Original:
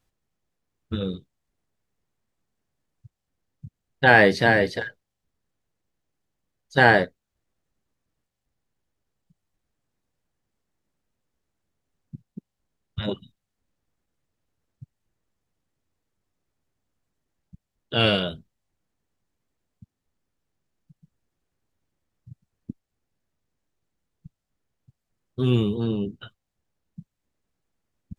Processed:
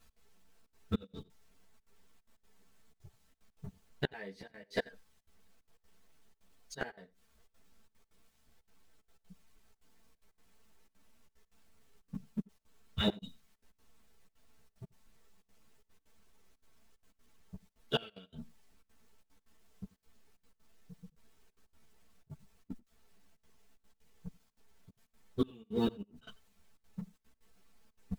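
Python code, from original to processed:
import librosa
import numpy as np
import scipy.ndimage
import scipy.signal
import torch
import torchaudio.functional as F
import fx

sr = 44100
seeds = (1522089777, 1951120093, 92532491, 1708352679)

p1 = fx.law_mismatch(x, sr, coded='mu')
p2 = fx.peak_eq(p1, sr, hz=220.0, db=-3.5, octaves=0.24)
p3 = p2 + 0.64 * np.pad(p2, (int(4.5 * sr / 1000.0), 0))[:len(p2)]
p4 = fx.step_gate(p3, sr, bpm=185, pattern='x.xxxxxx.xxxx.', floor_db=-24.0, edge_ms=4.5)
p5 = fx.gate_flip(p4, sr, shuts_db=-16.0, range_db=-31)
p6 = p5 + fx.echo_single(p5, sr, ms=88, db=-23.0, dry=0)
p7 = fx.ensemble(p6, sr)
y = p7 * librosa.db_to_amplitude(1.5)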